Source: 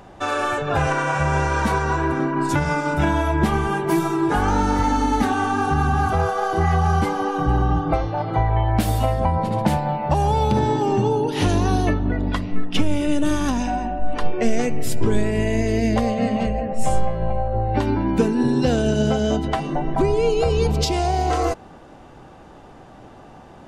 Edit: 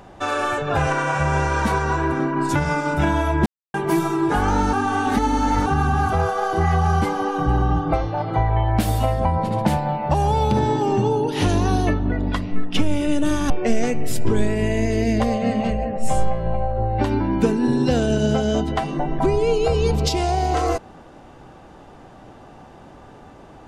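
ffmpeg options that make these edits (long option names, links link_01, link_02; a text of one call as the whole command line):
ffmpeg -i in.wav -filter_complex "[0:a]asplit=6[link_01][link_02][link_03][link_04][link_05][link_06];[link_01]atrim=end=3.46,asetpts=PTS-STARTPTS,afade=type=out:start_time=3.456:duration=0.004:curve=hsin[link_07];[link_02]atrim=start=3.46:end=3.74,asetpts=PTS-STARTPTS,volume=0[link_08];[link_03]atrim=start=3.74:end=4.732,asetpts=PTS-STARTPTS,afade=type=in:duration=0.004:curve=hsin[link_09];[link_04]atrim=start=4.728:end=5.662,asetpts=PTS-STARTPTS,areverse[link_10];[link_05]atrim=start=5.658:end=13.502[link_11];[link_06]atrim=start=14.258[link_12];[link_07][link_08][link_09]concat=n=3:v=0:a=1[link_13];[link_13][link_10]acrossfade=duration=0.004:curve1=hsin:curve2=hsin[link_14];[link_14][link_11]acrossfade=duration=0.004:curve1=hsin:curve2=hsin[link_15];[link_15][link_12]acrossfade=duration=0.004:curve1=hsin:curve2=hsin" out.wav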